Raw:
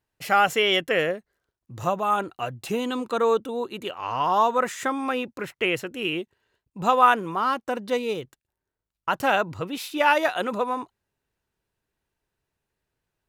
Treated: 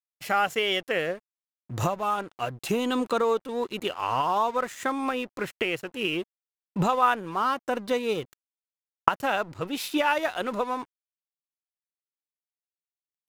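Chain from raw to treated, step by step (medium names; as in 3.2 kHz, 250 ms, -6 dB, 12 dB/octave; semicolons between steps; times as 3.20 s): recorder AGC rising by 16 dB/s; crossover distortion -40 dBFS; trim -4.5 dB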